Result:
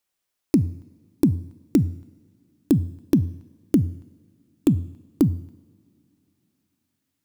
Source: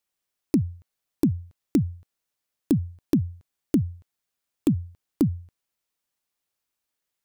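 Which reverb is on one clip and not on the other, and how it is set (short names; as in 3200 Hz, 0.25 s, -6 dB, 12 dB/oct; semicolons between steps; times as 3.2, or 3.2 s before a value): two-slope reverb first 0.9 s, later 3.5 s, from -19 dB, DRR 17.5 dB; gain +3 dB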